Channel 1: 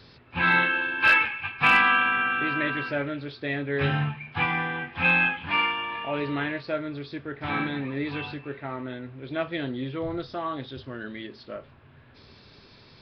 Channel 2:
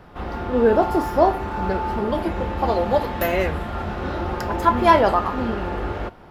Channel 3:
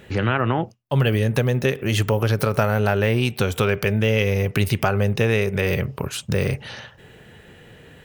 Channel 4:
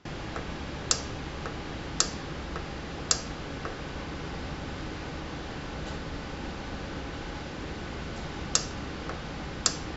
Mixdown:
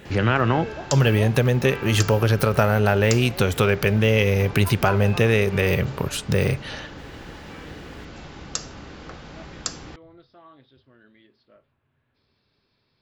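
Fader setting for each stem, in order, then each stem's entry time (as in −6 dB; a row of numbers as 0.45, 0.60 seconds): −18.5, −19.0, +1.0, −3.5 decibels; 0.00, 0.00, 0.00, 0.00 seconds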